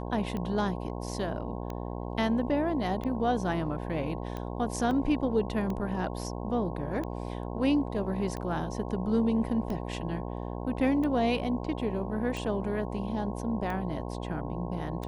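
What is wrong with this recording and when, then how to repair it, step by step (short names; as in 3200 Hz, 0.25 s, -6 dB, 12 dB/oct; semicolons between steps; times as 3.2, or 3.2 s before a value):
buzz 60 Hz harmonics 18 -36 dBFS
tick 45 rpm -23 dBFS
4.91 gap 2.4 ms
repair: de-click; de-hum 60 Hz, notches 18; interpolate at 4.91, 2.4 ms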